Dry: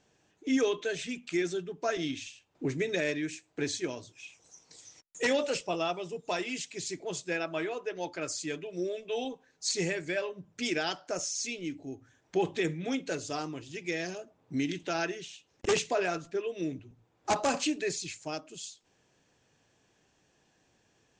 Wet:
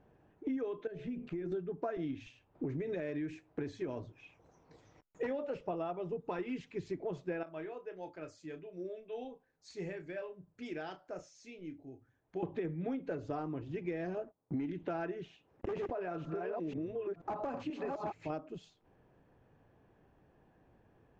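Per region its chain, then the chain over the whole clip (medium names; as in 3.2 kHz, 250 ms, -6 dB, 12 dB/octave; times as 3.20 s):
0.87–1.52 s: bass shelf 400 Hz +9.5 dB + de-hum 72.46 Hz, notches 20 + compression 5:1, threshold -41 dBFS
2.20–3.99 s: treble shelf 4.5 kHz +8 dB + compression 2.5:1, threshold -34 dBFS
6.22–6.86 s: peaking EQ 650 Hz -13 dB 0.27 oct + tape noise reduction on one side only decoder only
7.43–12.43 s: pre-emphasis filter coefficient 0.8 + doubling 32 ms -10 dB
14.17–14.70 s: gate -60 dBFS, range -17 dB + bass shelf 170 Hz -7 dB + waveshaping leveller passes 1
15.29–18.30 s: chunks repeated in reverse 482 ms, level -1.5 dB + bass shelf 71 Hz -10.5 dB + compression 4:1, threshold -37 dBFS
whole clip: low-pass 1.2 kHz 12 dB/octave; bass shelf 72 Hz +10 dB; compression 10:1, threshold -38 dBFS; trim +4 dB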